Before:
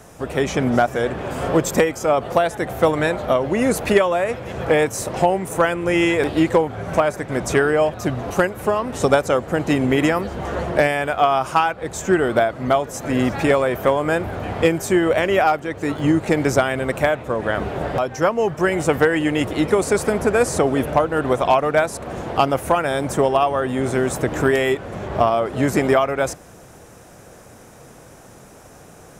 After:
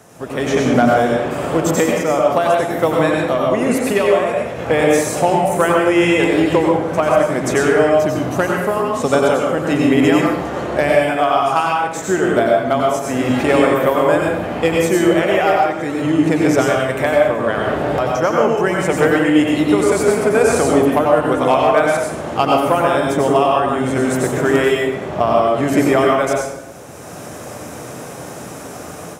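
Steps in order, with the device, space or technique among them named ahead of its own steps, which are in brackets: far laptop microphone (reverb RT60 0.90 s, pre-delay 85 ms, DRR -1.5 dB; HPF 110 Hz 12 dB/oct; AGC gain up to 10.5 dB); 22.6–23.36 bell 10000 Hz -4.5 dB 1.2 oct; gain -1 dB

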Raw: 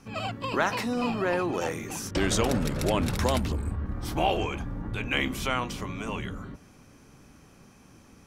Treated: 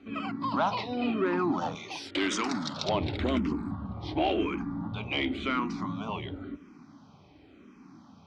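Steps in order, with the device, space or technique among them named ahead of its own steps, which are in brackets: barber-pole phaser into a guitar amplifier (endless phaser -0.93 Hz; soft clip -20 dBFS, distortion -18 dB; speaker cabinet 110–4100 Hz, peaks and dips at 130 Hz -7 dB, 290 Hz +6 dB, 500 Hz -9 dB, 1700 Hz -9 dB, 2700 Hz -6 dB); 1.75–2.89 tilt +4 dB/oct; gain +4.5 dB

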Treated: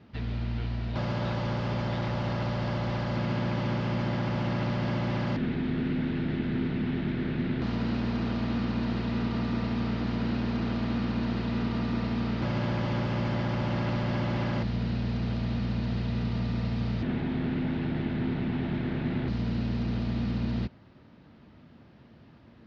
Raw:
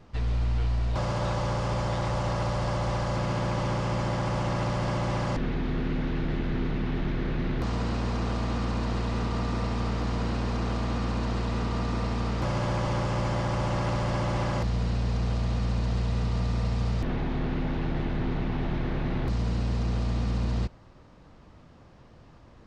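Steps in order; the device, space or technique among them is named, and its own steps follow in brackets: guitar cabinet (speaker cabinet 89–4500 Hz, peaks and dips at 230 Hz +6 dB, 510 Hz -5 dB, 770 Hz -4 dB, 1100 Hz -7 dB)

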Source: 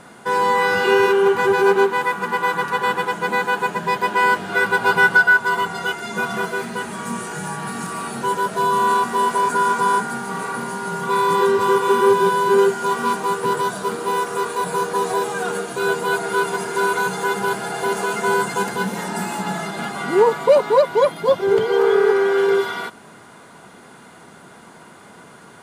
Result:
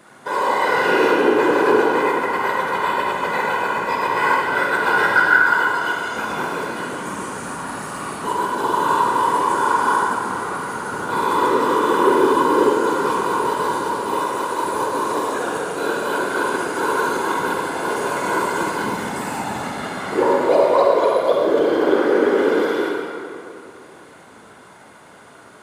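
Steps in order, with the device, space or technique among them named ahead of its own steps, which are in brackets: whispering ghost (whisperiser; HPF 200 Hz 6 dB/oct; reverb RT60 2.6 s, pre-delay 41 ms, DRR -2.5 dB); gain -4.5 dB

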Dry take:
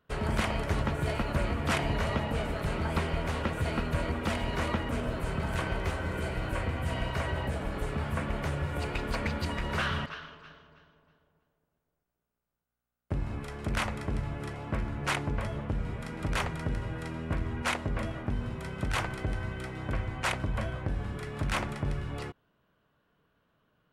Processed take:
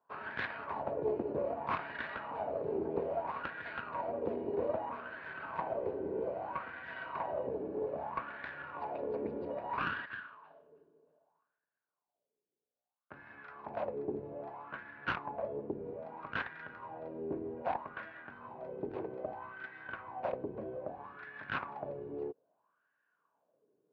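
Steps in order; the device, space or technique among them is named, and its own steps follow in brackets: wah-wah guitar rig (wah 0.62 Hz 390–1700 Hz, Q 5.7; tube stage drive 30 dB, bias 0.7; speaker cabinet 86–4000 Hz, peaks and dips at 280 Hz +3 dB, 1300 Hz -8 dB, 2000 Hz -7 dB, 3200 Hz -7 dB); gain +12 dB

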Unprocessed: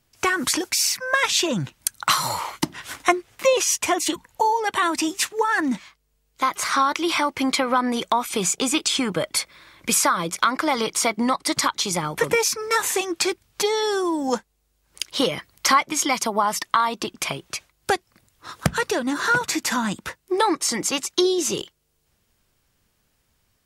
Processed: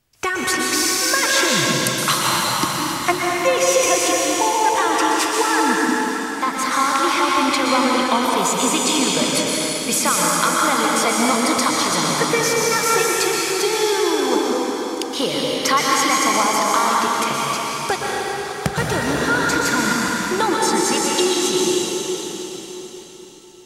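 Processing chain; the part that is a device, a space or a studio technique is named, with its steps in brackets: cathedral (reverb RT60 4.4 s, pre-delay 0.113 s, DRR -4.5 dB); gain -1 dB

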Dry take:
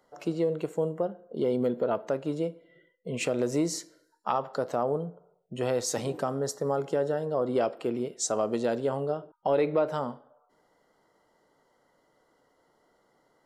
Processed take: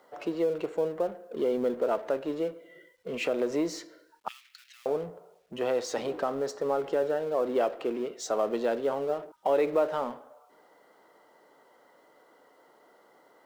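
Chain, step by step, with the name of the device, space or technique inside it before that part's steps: phone line with mismatched companding (BPF 300–3600 Hz; G.711 law mismatch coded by mu); 4.28–4.86 steep high-pass 2100 Hz 36 dB/oct

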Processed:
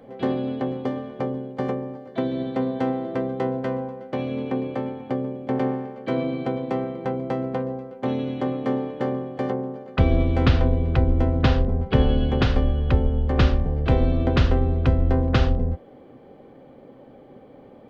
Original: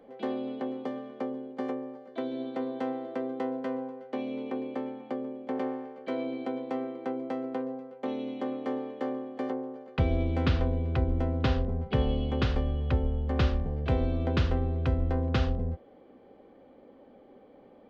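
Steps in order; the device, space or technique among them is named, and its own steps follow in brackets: octave pedal (harmoniser -12 st -7 dB); gain +7 dB

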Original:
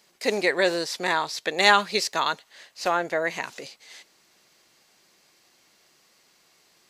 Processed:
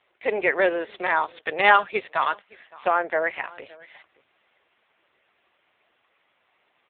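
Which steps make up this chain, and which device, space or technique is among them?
satellite phone (BPF 390–3200 Hz; echo 0.565 s -22.5 dB; gain +3.5 dB; AMR-NB 5.9 kbps 8000 Hz)

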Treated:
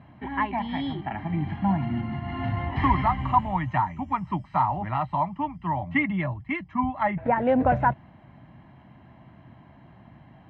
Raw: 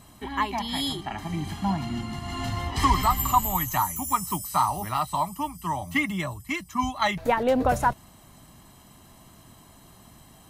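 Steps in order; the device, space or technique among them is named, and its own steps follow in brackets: 6.63–7.36 treble ducked by the level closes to 1600 Hz, closed at -21.5 dBFS; bass cabinet (speaker cabinet 75–2200 Hz, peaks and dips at 130 Hz +4 dB, 430 Hz -9 dB, 1200 Hz -9 dB); gain +3 dB

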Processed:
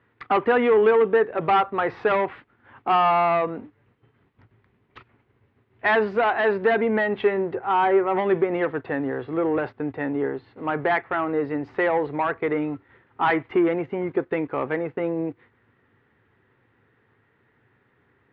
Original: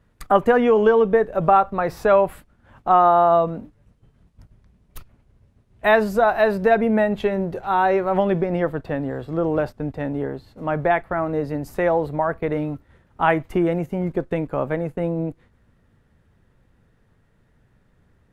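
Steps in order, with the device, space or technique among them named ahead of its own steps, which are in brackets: 7.55–8.17 LPF 1700 Hz 12 dB/oct; overdrive pedal into a guitar cabinet (overdrive pedal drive 18 dB, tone 2400 Hz, clips at -2.5 dBFS; speaker cabinet 84–3500 Hz, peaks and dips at 110 Hz +8 dB, 180 Hz -5 dB, 280 Hz +3 dB, 390 Hz +5 dB, 610 Hz -8 dB, 2000 Hz +4 dB); gain -7 dB

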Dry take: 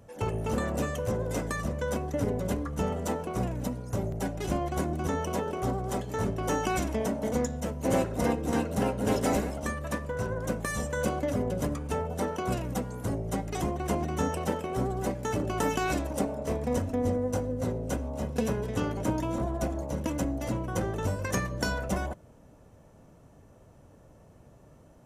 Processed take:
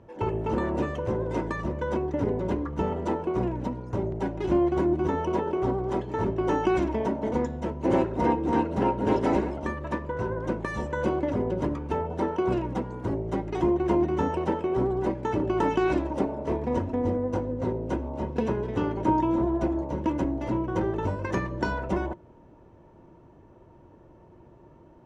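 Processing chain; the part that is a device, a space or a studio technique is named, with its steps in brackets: inside a cardboard box (LPF 3100 Hz 12 dB/oct; small resonant body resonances 350/930 Hz, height 14 dB, ringing for 70 ms)

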